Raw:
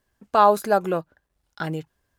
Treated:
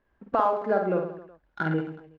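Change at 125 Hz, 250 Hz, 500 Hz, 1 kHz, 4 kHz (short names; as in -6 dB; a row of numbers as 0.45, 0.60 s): +0.5 dB, 0.0 dB, -4.0 dB, -7.0 dB, under -10 dB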